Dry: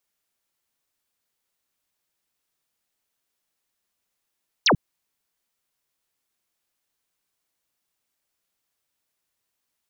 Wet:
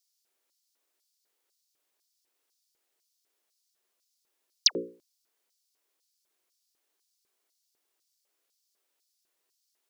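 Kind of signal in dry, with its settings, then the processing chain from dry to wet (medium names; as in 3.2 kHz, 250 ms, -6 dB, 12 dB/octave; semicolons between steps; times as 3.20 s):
laser zap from 6.6 kHz, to 110 Hz, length 0.09 s sine, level -14 dB
hum notches 60/120/180/240/300/360/420/480/540 Hz; peak limiter -17 dBFS; LFO high-pass square 2 Hz 380–4900 Hz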